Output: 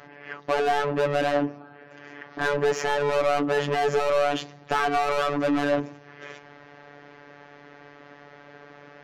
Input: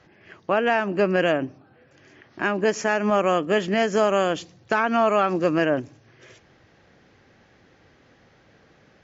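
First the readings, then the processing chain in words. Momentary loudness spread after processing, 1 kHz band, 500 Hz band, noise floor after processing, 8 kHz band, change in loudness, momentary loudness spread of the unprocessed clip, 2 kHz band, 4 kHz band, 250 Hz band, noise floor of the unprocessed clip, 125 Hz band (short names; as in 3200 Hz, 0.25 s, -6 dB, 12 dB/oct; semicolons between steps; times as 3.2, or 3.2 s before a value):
18 LU, -1.0 dB, -2.0 dB, -49 dBFS, n/a, -2.5 dB, 7 LU, -3.0 dB, -0.5 dB, -4.5 dB, -58 dBFS, -2.0 dB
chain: high shelf 2300 Hz -10 dB; overdrive pedal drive 28 dB, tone 2700 Hz, clips at -9 dBFS; robotiser 144 Hz; gain -4.5 dB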